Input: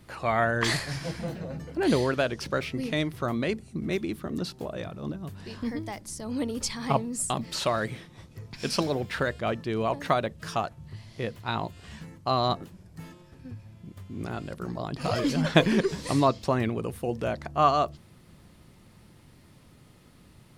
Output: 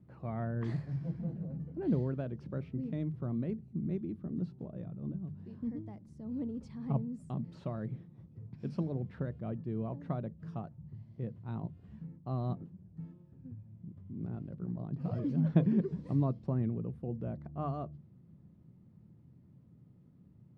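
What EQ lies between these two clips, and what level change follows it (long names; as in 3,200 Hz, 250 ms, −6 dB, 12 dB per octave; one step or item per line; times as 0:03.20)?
resonant band-pass 150 Hz, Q 1.6
mains-hum notches 50/100/150 Hz
0.0 dB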